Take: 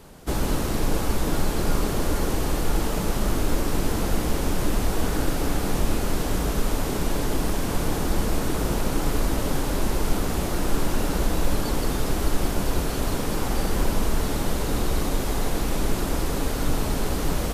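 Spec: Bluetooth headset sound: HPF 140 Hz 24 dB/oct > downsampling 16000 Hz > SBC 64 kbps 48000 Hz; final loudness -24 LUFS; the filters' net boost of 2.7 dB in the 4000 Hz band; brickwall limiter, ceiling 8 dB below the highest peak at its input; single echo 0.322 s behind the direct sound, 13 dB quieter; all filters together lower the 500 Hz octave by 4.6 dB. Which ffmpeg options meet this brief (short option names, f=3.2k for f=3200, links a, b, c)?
-af "equalizer=f=500:t=o:g=-6,equalizer=f=4k:t=o:g=3.5,alimiter=limit=-15.5dB:level=0:latency=1,highpass=f=140:w=0.5412,highpass=f=140:w=1.3066,aecho=1:1:322:0.224,aresample=16000,aresample=44100,volume=6.5dB" -ar 48000 -c:a sbc -b:a 64k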